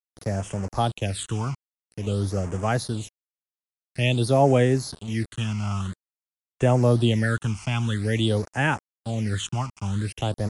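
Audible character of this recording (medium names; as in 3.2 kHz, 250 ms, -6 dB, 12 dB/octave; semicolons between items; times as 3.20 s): a quantiser's noise floor 6-bit, dither none; phasing stages 8, 0.49 Hz, lowest notch 500–3900 Hz; MP3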